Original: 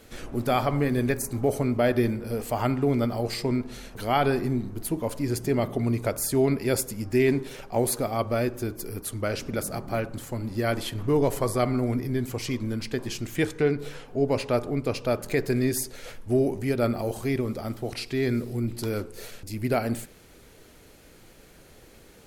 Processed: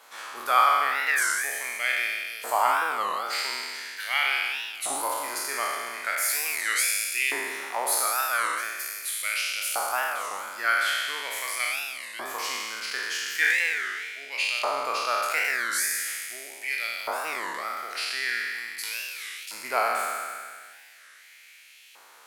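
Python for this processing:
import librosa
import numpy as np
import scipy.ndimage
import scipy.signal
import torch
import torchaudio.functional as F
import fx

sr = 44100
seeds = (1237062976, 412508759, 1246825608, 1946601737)

y = fx.spec_trails(x, sr, decay_s=2.2)
y = fx.filter_lfo_highpass(y, sr, shape='saw_up', hz=0.41, low_hz=930.0, high_hz=2700.0, q=3.4)
y = fx.record_warp(y, sr, rpm=33.33, depth_cents=250.0)
y = y * librosa.db_to_amplitude(-1.5)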